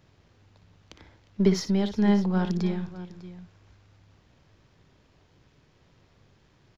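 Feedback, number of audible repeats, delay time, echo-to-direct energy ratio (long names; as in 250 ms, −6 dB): repeats not evenly spaced, 3, 59 ms, −9.0 dB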